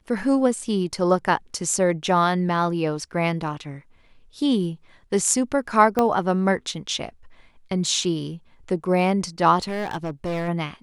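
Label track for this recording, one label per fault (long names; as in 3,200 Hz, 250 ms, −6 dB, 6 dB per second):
5.990000	5.990000	click −8 dBFS
9.630000	10.490000	clipping −23 dBFS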